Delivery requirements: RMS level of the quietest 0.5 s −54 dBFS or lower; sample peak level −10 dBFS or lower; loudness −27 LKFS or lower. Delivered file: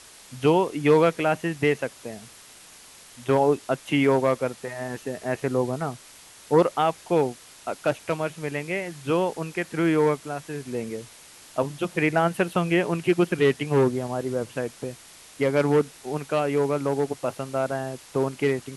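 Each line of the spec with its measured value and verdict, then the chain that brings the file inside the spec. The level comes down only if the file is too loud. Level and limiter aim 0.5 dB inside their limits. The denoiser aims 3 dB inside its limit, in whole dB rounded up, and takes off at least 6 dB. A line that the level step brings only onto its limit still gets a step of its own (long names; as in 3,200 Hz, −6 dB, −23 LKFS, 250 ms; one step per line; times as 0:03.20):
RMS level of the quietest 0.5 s −48 dBFS: out of spec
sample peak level −8.0 dBFS: out of spec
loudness −25.0 LKFS: out of spec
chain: broadband denoise 7 dB, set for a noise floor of −48 dBFS
level −2.5 dB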